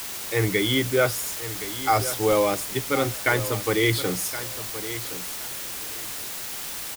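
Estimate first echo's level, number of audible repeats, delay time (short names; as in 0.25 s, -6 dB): -13.0 dB, 2, 1.07 s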